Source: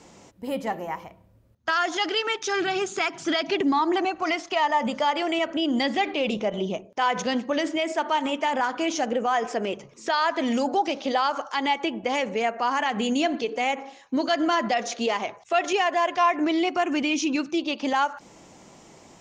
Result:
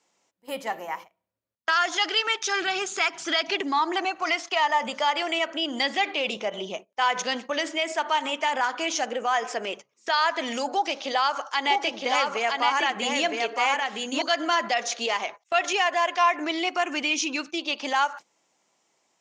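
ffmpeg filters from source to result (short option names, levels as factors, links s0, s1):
-filter_complex "[0:a]asettb=1/sr,asplit=3[s0][s1][s2];[s0]atrim=end=10.694[s3];[s1]atrim=start=10.69:end=14.22,asetpts=PTS-STARTPTS,afade=t=in:d=0.004:c=qsin,afade=t=out:st=3.526:d=0.004:c=qsin,aecho=1:1:964:0.708,atrim=end_sample=155673[s4];[s2]atrim=start=14.216[s5];[s3][s4]acrossfade=d=0.004:c1=hsin:c2=qsin[s6];[s6][s5]acrossfade=d=0.004:c1=qsin:c2=hsin,highpass=f=1100:p=1,agate=range=0.112:threshold=0.00891:ratio=16:detection=peak,volume=1.5"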